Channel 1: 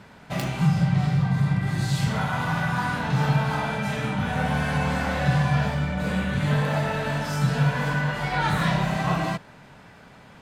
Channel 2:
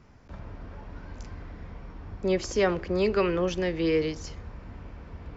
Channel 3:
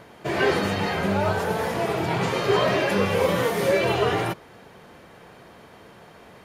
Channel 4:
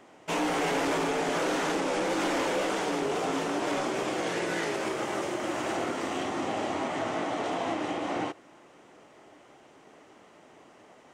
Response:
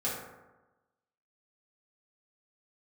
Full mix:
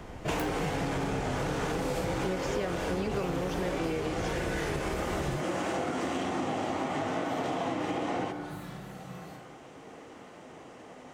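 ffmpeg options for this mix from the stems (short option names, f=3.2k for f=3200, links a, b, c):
-filter_complex "[0:a]aemphasis=mode=production:type=75fm,volume=-11dB,asplit=2[a][b];[b]volume=-19.5dB[c];[1:a]volume=3dB,asplit=2[d][e];[2:a]volume=-7.5dB[f];[3:a]volume=2.5dB,asplit=2[g][h];[h]volume=-11.5dB[i];[e]apad=whole_len=459464[j];[a][j]sidechaingate=range=-33dB:threshold=-42dB:ratio=16:detection=peak[k];[4:a]atrim=start_sample=2205[l];[c][i]amix=inputs=2:normalize=0[m];[m][l]afir=irnorm=-1:irlink=0[n];[k][d][f][g][n]amix=inputs=5:normalize=0,lowshelf=f=190:g=7.5,acompressor=threshold=-28dB:ratio=10"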